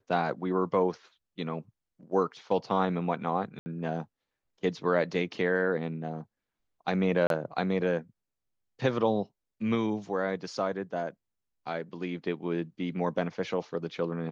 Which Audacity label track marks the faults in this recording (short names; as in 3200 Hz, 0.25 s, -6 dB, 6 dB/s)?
3.590000	3.660000	gap 70 ms
7.270000	7.300000	gap 32 ms